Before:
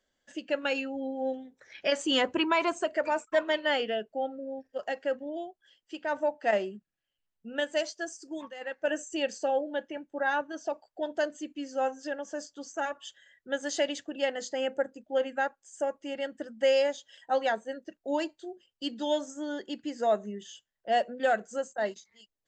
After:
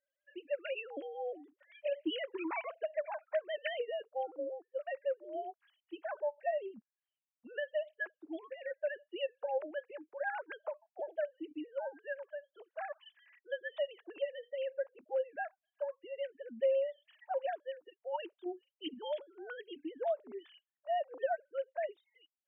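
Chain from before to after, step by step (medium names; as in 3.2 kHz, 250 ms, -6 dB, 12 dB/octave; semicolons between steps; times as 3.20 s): formants replaced by sine waves; compression 2:1, threshold -33 dBFS, peak gain reduction 10.5 dB; trim -2.5 dB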